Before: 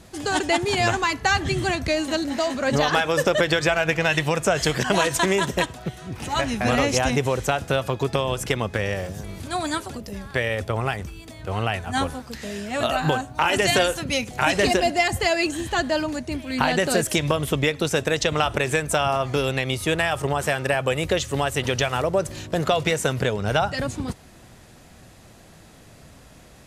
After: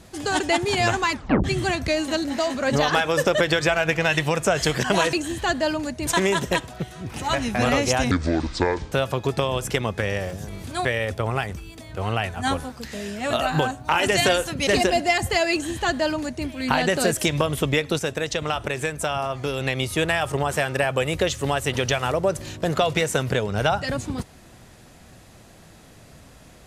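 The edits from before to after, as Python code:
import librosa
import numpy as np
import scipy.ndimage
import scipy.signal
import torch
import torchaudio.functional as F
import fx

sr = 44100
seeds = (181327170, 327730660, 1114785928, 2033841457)

y = fx.edit(x, sr, fx.tape_stop(start_s=1.12, length_s=0.32),
    fx.speed_span(start_s=7.17, length_s=0.51, speed=0.63),
    fx.cut(start_s=9.61, length_s=0.74),
    fx.cut(start_s=14.17, length_s=0.4),
    fx.duplicate(start_s=15.42, length_s=0.94, to_s=5.13),
    fx.clip_gain(start_s=17.89, length_s=1.62, db=-4.0), tone=tone)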